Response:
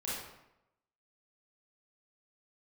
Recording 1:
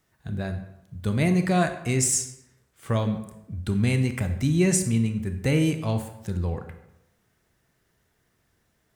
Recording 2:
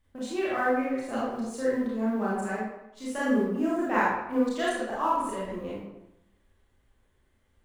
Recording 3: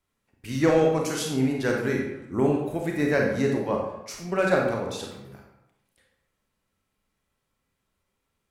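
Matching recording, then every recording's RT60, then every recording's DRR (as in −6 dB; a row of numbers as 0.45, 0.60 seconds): 2; 0.85, 0.85, 0.85 seconds; 7.5, −8.0, −0.5 decibels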